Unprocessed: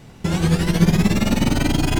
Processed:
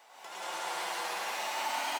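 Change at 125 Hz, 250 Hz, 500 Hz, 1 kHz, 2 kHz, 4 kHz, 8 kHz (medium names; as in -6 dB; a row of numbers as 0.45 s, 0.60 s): under -40 dB, -37.5 dB, -15.5 dB, -3.5 dB, -8.5 dB, -9.5 dB, -9.5 dB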